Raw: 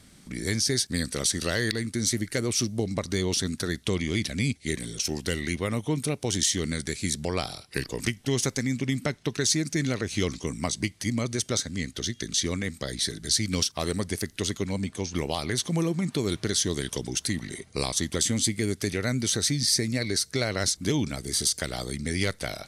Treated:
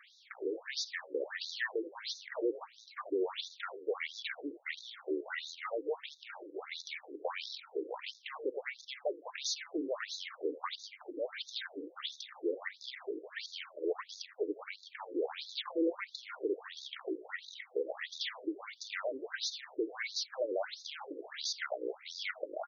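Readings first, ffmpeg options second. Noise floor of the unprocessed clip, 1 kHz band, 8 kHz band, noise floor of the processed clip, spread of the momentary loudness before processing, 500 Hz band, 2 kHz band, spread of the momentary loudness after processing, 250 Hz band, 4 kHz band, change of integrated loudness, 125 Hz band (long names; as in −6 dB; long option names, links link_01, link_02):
−55 dBFS, −6.5 dB, −22.0 dB, −61 dBFS, 7 LU, −5.5 dB, −8.0 dB, 8 LU, −14.0 dB, −11.5 dB, −12.0 dB, below −40 dB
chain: -filter_complex "[0:a]aemphasis=mode=reproduction:type=75fm,asplit=2[link_01][link_02];[link_02]highpass=frequency=720:poles=1,volume=25dB,asoftclip=type=tanh:threshold=-12dB[link_03];[link_01][link_03]amix=inputs=2:normalize=0,lowpass=frequency=2900:poles=1,volume=-6dB,asplit=2[link_04][link_05];[link_05]asplit=3[link_06][link_07][link_08];[link_06]adelay=83,afreqshift=53,volume=-16dB[link_09];[link_07]adelay=166,afreqshift=106,volume=-24.9dB[link_10];[link_08]adelay=249,afreqshift=159,volume=-33.7dB[link_11];[link_09][link_10][link_11]amix=inputs=3:normalize=0[link_12];[link_04][link_12]amix=inputs=2:normalize=0,afftfilt=real='re*between(b*sr/1024,370*pow(5000/370,0.5+0.5*sin(2*PI*1.5*pts/sr))/1.41,370*pow(5000/370,0.5+0.5*sin(2*PI*1.5*pts/sr))*1.41)':imag='im*between(b*sr/1024,370*pow(5000/370,0.5+0.5*sin(2*PI*1.5*pts/sr))/1.41,370*pow(5000/370,0.5+0.5*sin(2*PI*1.5*pts/sr))*1.41)':win_size=1024:overlap=0.75,volume=-8.5dB"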